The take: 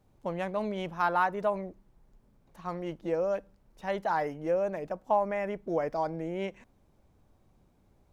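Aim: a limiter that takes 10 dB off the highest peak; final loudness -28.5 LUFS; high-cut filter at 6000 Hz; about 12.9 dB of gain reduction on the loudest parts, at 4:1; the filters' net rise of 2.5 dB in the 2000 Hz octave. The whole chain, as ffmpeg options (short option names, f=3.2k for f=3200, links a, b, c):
-af "lowpass=6k,equalizer=f=2k:t=o:g=3.5,acompressor=threshold=-37dB:ratio=4,volume=16dB,alimiter=limit=-18.5dB:level=0:latency=1"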